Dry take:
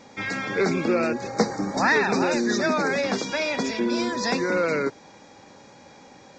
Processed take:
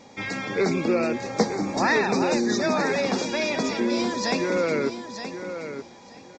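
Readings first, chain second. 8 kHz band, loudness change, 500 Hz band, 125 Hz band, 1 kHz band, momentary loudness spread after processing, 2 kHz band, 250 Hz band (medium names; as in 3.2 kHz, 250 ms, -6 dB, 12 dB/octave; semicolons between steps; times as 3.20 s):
+0.5 dB, -1.0 dB, +0.5 dB, +0.5 dB, -0.5 dB, 12 LU, -2.5 dB, +0.5 dB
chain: peaking EQ 1.5 kHz -5.5 dB 0.51 oct; on a send: feedback delay 924 ms, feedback 18%, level -9.5 dB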